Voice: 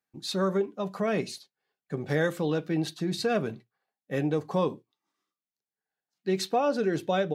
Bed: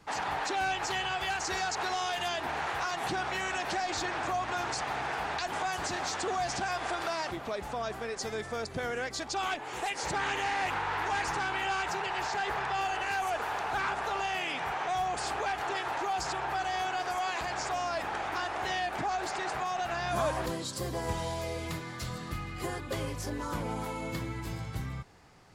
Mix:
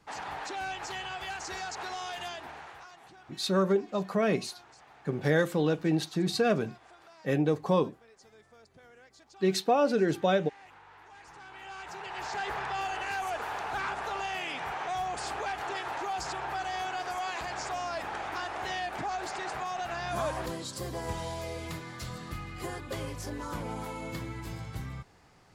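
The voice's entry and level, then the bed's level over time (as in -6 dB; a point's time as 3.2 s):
3.15 s, +1.0 dB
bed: 2.25 s -5.5 dB
3.12 s -22 dB
11.13 s -22 dB
12.38 s -2 dB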